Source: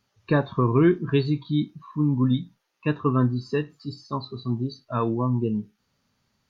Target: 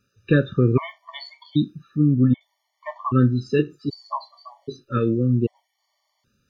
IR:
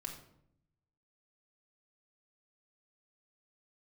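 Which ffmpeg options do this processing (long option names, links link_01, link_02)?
-filter_complex "[0:a]asettb=1/sr,asplit=3[link_01][link_02][link_03];[link_01]atrim=end=1.974[link_04];[link_02]atrim=start=1.97:end=2.41,asetpts=PTS-STARTPTS,afade=type=in:duration=0.004:curve=qsin,afade=type=out:start_time=0.436:duration=0.004:curve=qsin,lowpass=frequency=2300:width=0.5412,lowpass=frequency=2300:width=1.3066[link_05];[link_03]atrim=start=2.406[link_06];[link_04][link_05]acrossfade=duration=0.004:curve1=hsin:curve2=qsin[link_07];[link_07][link_06]acrossfade=duration=0.004:curve1=qsin:curve2=hsin,asettb=1/sr,asplit=3[link_08][link_09][link_10];[link_08]atrim=end=3.594[link_11];[link_09]atrim=start=3.59:end=4.98,asetpts=PTS-STARTPTS,afade=type=in:duration=0.004:curve=qsin,afade=type=out:start_time=1.386:duration=0.004:curve=qsin,equalizer=frequency=370:width_type=o:width=0.41:gain=14[link_12];[link_10]atrim=start=4.976[link_13];[link_11][link_12]acrossfade=duration=0.004:curve1=hsin:curve2=qsin[link_14];[link_14][link_13]acrossfade=duration=0.004:curve1=qsin:curve2=hsin,afftfilt=real='re*gt(sin(2*PI*0.64*pts/sr)*(1-2*mod(floor(b*sr/1024/590),2)),0)':imag='im*gt(sin(2*PI*0.64*pts/sr)*(1-2*mod(floor(b*sr/1024/590),2)),0)':win_size=1024:overlap=0.75,volume=4.5dB"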